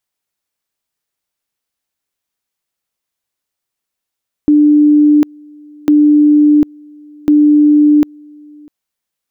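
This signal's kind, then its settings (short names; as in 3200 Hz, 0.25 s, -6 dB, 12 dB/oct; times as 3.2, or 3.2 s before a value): two-level tone 297 Hz -4.5 dBFS, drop 29.5 dB, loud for 0.75 s, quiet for 0.65 s, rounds 3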